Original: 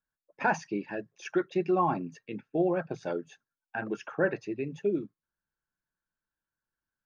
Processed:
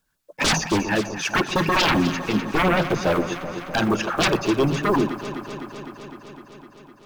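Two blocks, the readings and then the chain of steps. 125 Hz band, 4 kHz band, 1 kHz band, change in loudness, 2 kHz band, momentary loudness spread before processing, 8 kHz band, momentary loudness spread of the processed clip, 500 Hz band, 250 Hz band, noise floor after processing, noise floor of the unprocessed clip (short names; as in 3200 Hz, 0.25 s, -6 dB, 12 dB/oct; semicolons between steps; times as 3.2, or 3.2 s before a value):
+13.5 dB, +27.0 dB, +9.5 dB, +9.5 dB, +12.0 dB, 12 LU, n/a, 15 LU, +7.0 dB, +10.5 dB, -53 dBFS, under -85 dBFS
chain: block floating point 7-bit; sine folder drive 15 dB, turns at -14.5 dBFS; LFO notch sine 7.2 Hz 370–2200 Hz; echo with dull and thin repeats by turns 0.127 s, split 1100 Hz, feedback 86%, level -10.5 dB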